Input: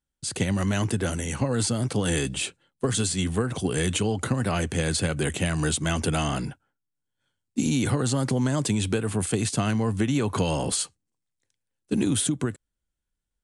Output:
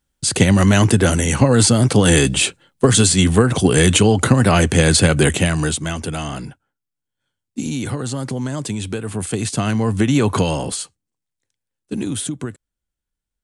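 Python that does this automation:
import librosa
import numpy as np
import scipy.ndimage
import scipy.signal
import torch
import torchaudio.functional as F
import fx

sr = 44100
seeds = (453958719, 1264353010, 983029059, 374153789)

y = fx.gain(x, sr, db=fx.line((5.24, 12.0), (6.0, 0.0), (8.94, 0.0), (10.28, 9.5), (10.81, 0.0)))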